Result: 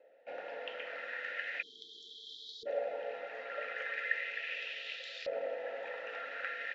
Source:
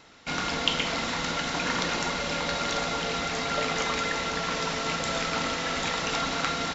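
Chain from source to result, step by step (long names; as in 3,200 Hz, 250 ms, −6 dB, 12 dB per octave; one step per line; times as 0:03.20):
formant filter e
auto-filter band-pass saw up 0.38 Hz 600–4,500 Hz
time-frequency box erased 0:01.62–0:02.67, 470–3,100 Hz
level +9 dB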